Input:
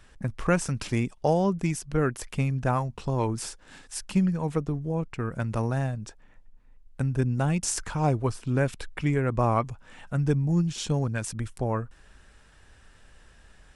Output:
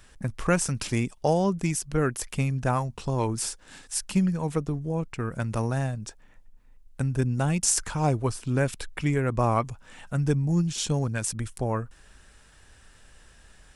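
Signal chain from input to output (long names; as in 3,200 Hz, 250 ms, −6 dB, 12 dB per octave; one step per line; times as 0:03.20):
high-shelf EQ 5,100 Hz +8.5 dB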